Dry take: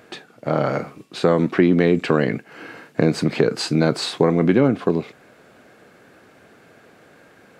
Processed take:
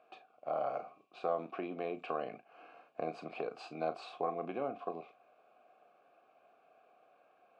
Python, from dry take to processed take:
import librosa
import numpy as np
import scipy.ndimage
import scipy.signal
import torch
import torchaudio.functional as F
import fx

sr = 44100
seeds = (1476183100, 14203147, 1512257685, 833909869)

y = fx.vowel_filter(x, sr, vowel='a')
y = fx.doubler(y, sr, ms=37.0, db=-11.5)
y = y * 10.0 ** (-5.5 / 20.0)